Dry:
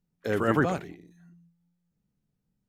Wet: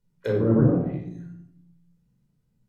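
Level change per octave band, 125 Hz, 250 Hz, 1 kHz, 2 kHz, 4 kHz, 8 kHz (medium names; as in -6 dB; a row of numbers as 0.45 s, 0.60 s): +10.5 dB, +7.5 dB, -9.0 dB, -10.0 dB, no reading, under -10 dB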